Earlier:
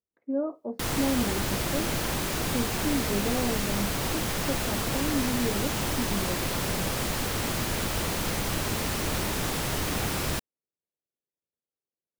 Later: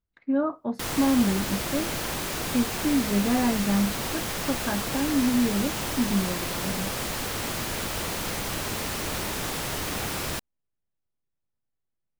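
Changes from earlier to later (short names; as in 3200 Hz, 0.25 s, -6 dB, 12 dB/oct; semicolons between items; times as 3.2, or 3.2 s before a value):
speech: remove band-pass 470 Hz, Q 2.1; master: add low shelf 290 Hz -5 dB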